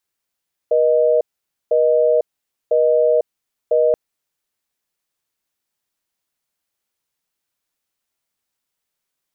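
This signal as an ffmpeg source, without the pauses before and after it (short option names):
-f lavfi -i "aevalsrc='0.188*(sin(2*PI*480*t)+sin(2*PI*620*t))*clip(min(mod(t,1),0.5-mod(t,1))/0.005,0,1)':d=3.23:s=44100"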